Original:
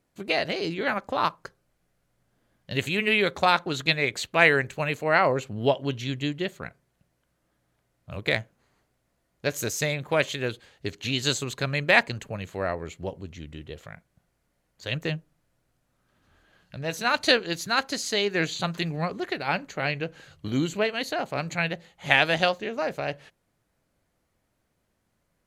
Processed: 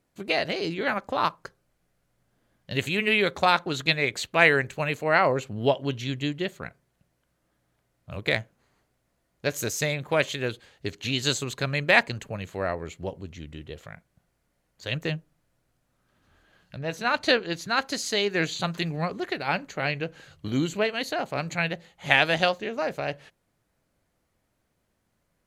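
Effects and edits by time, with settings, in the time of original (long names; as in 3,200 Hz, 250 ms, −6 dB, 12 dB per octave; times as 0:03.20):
0:16.76–0:17.80: high-shelf EQ 4,400 Hz → 6,900 Hz −10.5 dB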